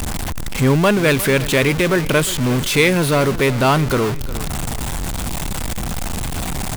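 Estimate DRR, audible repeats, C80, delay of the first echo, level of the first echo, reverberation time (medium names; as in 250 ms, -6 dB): no reverb, 2, no reverb, 355 ms, -16.5 dB, no reverb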